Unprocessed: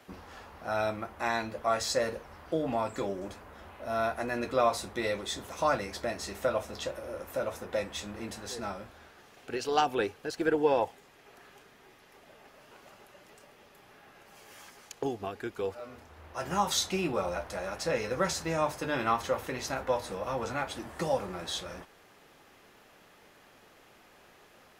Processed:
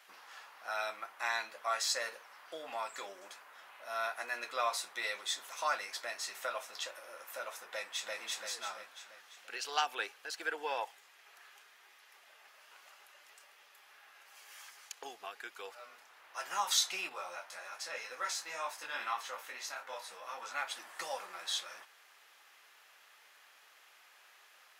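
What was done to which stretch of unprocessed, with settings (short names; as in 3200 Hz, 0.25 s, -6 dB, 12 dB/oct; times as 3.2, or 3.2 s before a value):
7.72–8.17 echo throw 0.34 s, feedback 50%, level -1 dB
17.09–20.54 detuned doubles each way 20 cents
whole clip: HPF 1200 Hz 12 dB/oct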